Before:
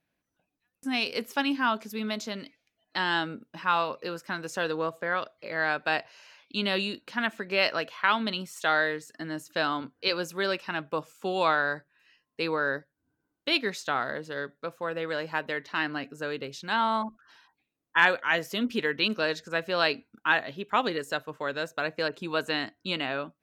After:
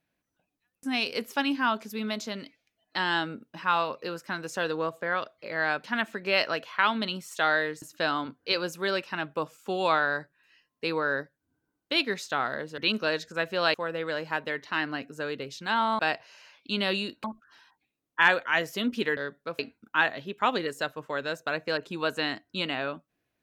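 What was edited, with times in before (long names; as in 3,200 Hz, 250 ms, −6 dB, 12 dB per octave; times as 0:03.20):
0:05.84–0:07.09: move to 0:17.01
0:09.07–0:09.38: remove
0:14.34–0:14.76: swap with 0:18.94–0:19.90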